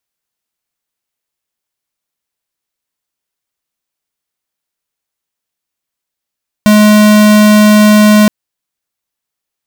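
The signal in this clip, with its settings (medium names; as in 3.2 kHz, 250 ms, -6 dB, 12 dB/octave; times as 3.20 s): tone square 211 Hz -5 dBFS 1.62 s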